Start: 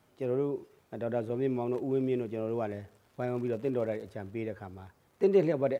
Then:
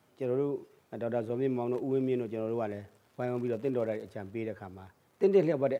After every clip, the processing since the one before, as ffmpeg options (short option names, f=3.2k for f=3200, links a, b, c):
-af "highpass=93"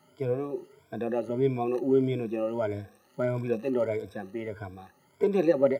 -af "afftfilt=real='re*pow(10,20/40*sin(2*PI*(1.7*log(max(b,1)*sr/1024/100)/log(2)-(1.6)*(pts-256)/sr)))':imag='im*pow(10,20/40*sin(2*PI*(1.7*log(max(b,1)*sr/1024/100)/log(2)-(1.6)*(pts-256)/sr)))':win_size=1024:overlap=0.75"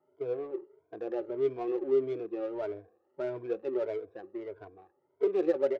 -af "lowshelf=f=280:t=q:w=3:g=-8.5,adynamicsmooth=sensitivity=3.5:basefreq=940,volume=-8dB"